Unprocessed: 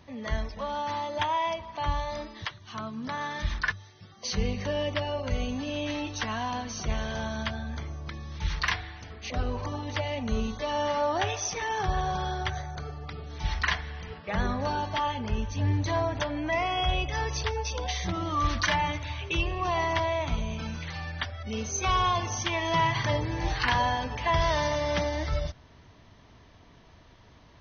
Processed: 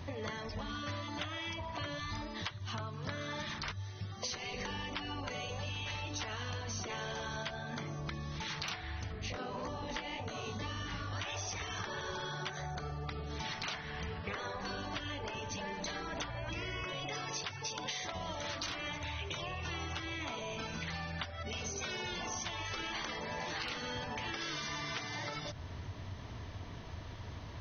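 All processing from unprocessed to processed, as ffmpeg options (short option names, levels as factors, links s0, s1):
-filter_complex "[0:a]asettb=1/sr,asplit=3[s0][s1][s2];[s0]atrim=end=9.124[s3];[s1]atrim=start=9.12:end=11.13,asetpts=PTS-STARTPTS,afade=t=in:d=0.004:c=qsin,afade=t=out:st=2.006:d=0.004:c=qsin,flanger=delay=15.5:depth=6.6:speed=1.7,aeval=exprs='val(0)+0.00355*(sin(2*PI*50*n/s)+sin(2*PI*2*50*n/s)/2+sin(2*PI*3*50*n/s)/3+sin(2*PI*4*50*n/s)/4+sin(2*PI*5*50*n/s)/5)':c=same,lowshelf=f=340:g=5.5[s4];[s2]atrim=start=11.126[s5];[s3][s4]acrossfade=d=0.004:c1=hsin:c2=qsin[s6];[s6][s5]acrossfade=d=0.004:c1=qsin:c2=hsin,asettb=1/sr,asplit=3[s7][s8][s9];[s7]atrim=end=19.024[s10];[s8]atrim=start=19.02:end=20.06,asetpts=PTS-STARTPTS,afade=t=in:d=0.004:c=qsin,afade=t=out:st=1.036:d=0.004:c=qsin,highpass=f=160:p=1,bandreject=f=4600:w=19[s11];[s9]atrim=start=20.056[s12];[s10][s11]acrossfade=d=0.004:c1=hsin:c2=qsin[s13];[s13][s12]acrossfade=d=0.004:c1=qsin:c2=hsin,afftfilt=real='re*lt(hypot(re,im),0.1)':imag='im*lt(hypot(re,im),0.1)':win_size=1024:overlap=0.75,equalizer=f=93:t=o:w=0.66:g=8.5,acompressor=threshold=0.00631:ratio=6,volume=2.11"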